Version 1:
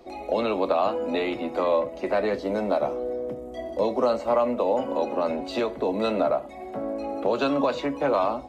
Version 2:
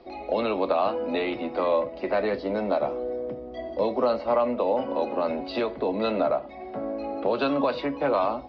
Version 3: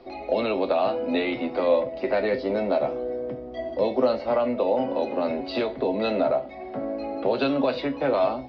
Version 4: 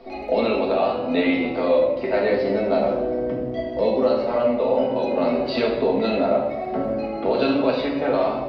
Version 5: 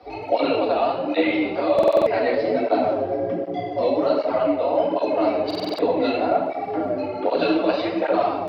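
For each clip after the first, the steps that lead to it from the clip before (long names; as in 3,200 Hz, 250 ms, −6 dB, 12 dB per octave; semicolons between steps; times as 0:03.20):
elliptic low-pass filter 5,000 Hz, stop band 50 dB
dynamic equaliser 1,100 Hz, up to −7 dB, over −42 dBFS, Q 2.6; tuned comb filter 130 Hz, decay 0.26 s, harmonics all, mix 70%; level +9 dB
speech leveller within 4 dB 0.5 s; surface crackle 12 per second −50 dBFS; rectangular room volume 550 cubic metres, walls mixed, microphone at 1.6 metres
frequency shifter +49 Hz; buffer that repeats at 0:01.74/0:05.46, samples 2,048, times 6; through-zero flanger with one copy inverted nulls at 1.3 Hz, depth 7.5 ms; level +3 dB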